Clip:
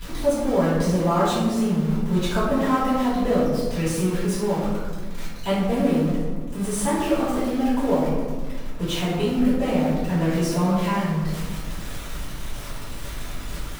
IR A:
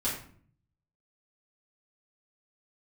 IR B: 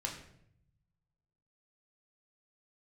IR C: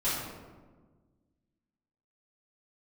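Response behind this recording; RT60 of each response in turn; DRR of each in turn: C; 0.55, 0.70, 1.4 s; -9.0, -1.0, -12.0 dB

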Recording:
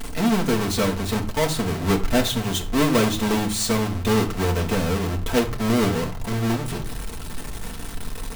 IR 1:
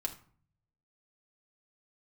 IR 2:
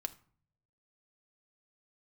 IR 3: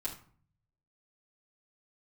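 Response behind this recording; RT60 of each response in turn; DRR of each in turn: 1; 0.45, 0.50, 0.45 s; 1.5, 8.0, -7.5 dB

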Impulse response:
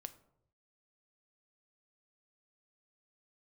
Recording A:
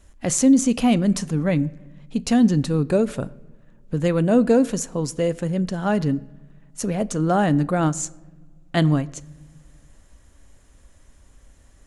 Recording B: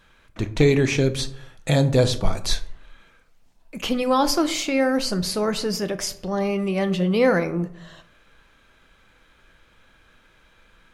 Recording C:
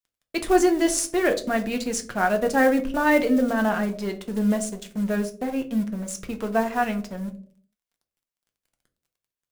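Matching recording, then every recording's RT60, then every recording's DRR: B; not exponential, 0.75 s, 0.50 s; 17.0, 10.0, 5.0 dB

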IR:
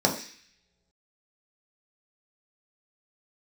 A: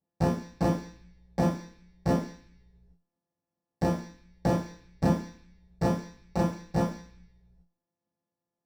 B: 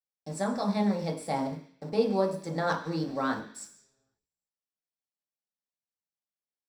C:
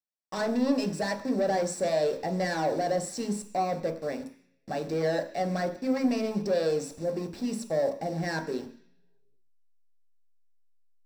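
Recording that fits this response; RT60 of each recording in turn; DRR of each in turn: B; not exponential, not exponential, not exponential; -9.5, -0.5, 3.5 dB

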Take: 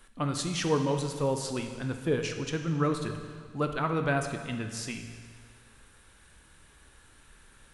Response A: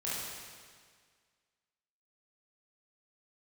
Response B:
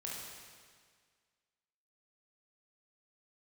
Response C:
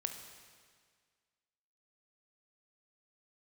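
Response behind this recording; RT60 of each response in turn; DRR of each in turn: C; 1.8, 1.8, 1.8 s; -9.0, -5.0, 5.0 dB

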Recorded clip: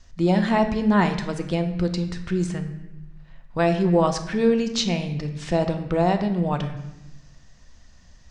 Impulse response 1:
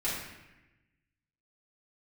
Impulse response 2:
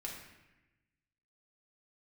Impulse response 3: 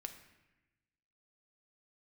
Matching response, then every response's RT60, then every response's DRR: 3; 1.0, 1.0, 1.0 s; -10.5, -2.5, 6.0 dB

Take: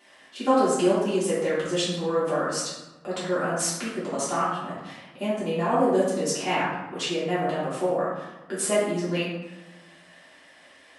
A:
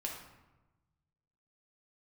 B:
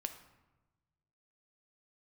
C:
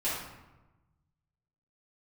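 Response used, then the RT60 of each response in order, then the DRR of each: C; 1.1, 1.1, 1.1 s; -1.5, 7.0, -11.0 dB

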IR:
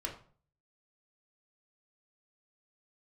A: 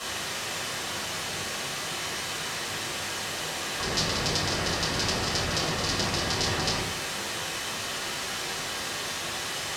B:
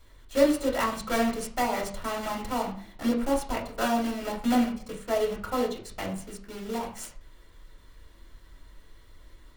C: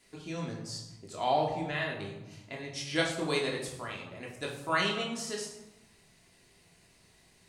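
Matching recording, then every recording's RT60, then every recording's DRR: B; 0.70, 0.45, 1.0 s; -9.5, -1.0, -2.0 dB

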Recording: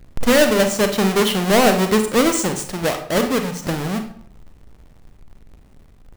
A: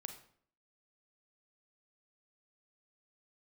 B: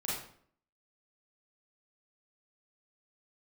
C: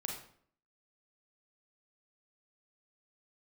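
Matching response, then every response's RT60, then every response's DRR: A; 0.60, 0.60, 0.60 s; 6.0, -7.5, 0.0 dB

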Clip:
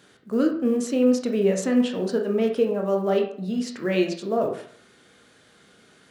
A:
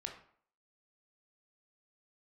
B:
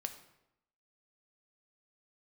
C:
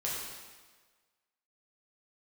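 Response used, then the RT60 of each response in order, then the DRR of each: A; 0.55, 0.85, 1.4 s; 2.0, 6.5, -6.5 dB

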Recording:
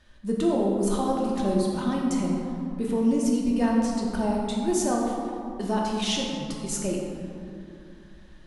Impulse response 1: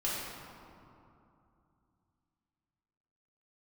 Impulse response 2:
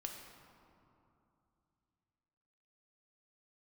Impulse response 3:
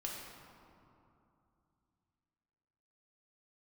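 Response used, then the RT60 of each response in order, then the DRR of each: 3; 2.7, 2.8, 2.8 s; -8.0, 1.5, -3.0 dB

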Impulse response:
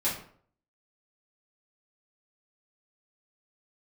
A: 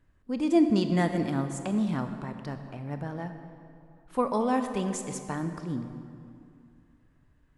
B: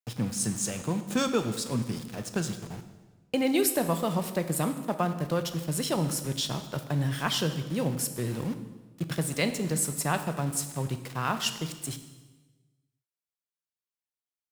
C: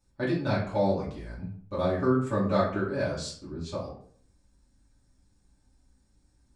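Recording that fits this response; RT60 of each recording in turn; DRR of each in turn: C; 2.5, 1.3, 0.55 s; 7.5, 8.0, -9.5 dB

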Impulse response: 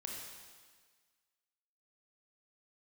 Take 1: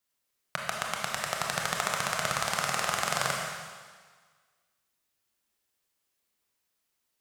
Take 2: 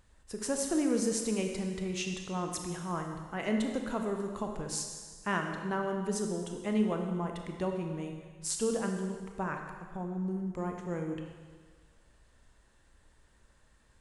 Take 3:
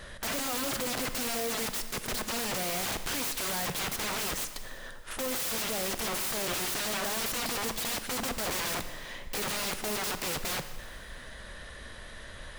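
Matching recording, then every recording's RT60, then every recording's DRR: 1; 1.6, 1.6, 1.6 s; -1.5, 3.0, 9.5 dB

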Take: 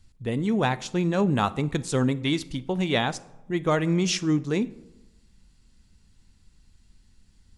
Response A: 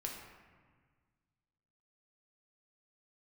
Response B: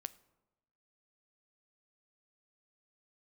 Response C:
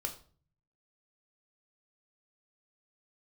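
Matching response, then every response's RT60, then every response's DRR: B; 1.6, 1.0, 0.45 s; -1.0, 14.5, 3.0 dB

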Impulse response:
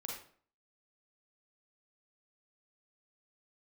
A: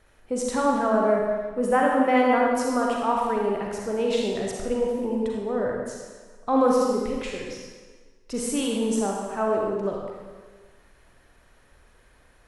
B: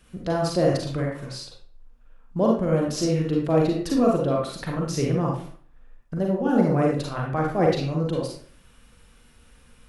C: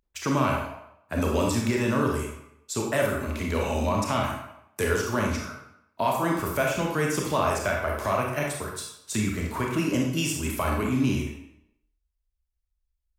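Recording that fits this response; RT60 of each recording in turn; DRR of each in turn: B; 1.5, 0.50, 0.80 s; -1.5, -2.0, -0.5 dB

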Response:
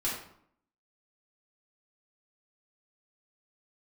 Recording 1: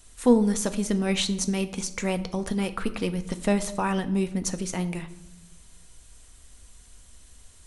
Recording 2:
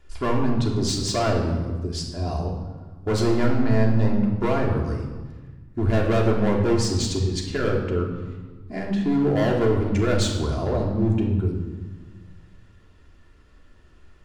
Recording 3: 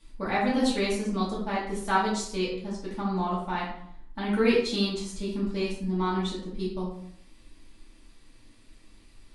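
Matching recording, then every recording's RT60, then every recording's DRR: 3; 0.95, 1.4, 0.65 s; 8.5, -1.5, -8.0 dB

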